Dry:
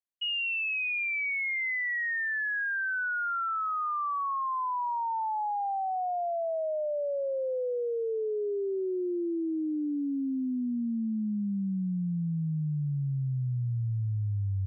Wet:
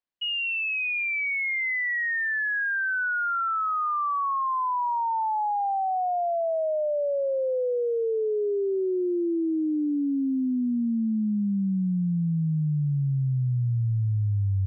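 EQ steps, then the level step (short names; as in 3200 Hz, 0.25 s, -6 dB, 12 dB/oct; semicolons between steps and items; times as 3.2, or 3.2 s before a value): air absorption 180 m; +5.5 dB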